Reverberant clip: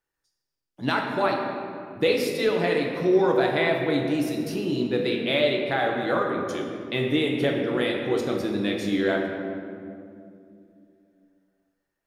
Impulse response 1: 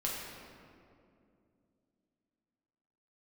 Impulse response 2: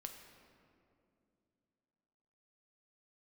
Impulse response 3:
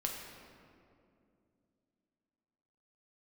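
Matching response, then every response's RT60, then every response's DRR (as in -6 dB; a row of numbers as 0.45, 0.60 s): 3; 2.5, 2.6, 2.5 s; -4.5, 4.0, 0.0 dB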